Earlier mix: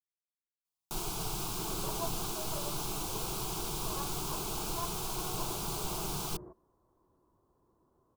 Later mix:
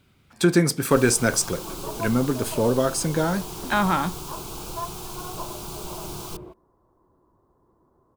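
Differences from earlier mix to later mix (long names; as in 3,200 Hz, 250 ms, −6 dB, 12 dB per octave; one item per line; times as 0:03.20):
speech: unmuted
second sound +8.0 dB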